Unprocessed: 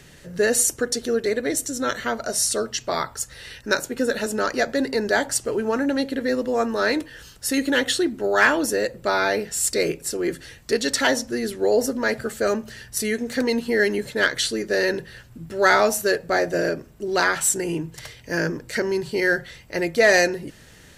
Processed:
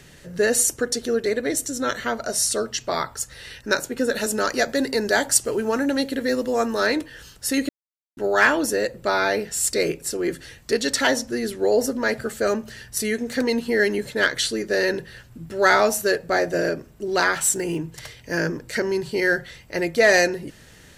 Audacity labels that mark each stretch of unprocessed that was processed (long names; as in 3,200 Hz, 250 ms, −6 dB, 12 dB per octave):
4.150000	6.870000	high-shelf EQ 4,900 Hz +8 dB
7.690000	8.170000	silence
17.330000	17.790000	one scale factor per block 7 bits